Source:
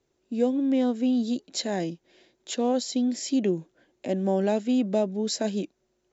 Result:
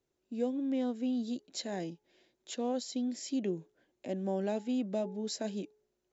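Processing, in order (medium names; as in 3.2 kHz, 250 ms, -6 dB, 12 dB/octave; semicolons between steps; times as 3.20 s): de-hum 424.8 Hz, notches 2; trim -9 dB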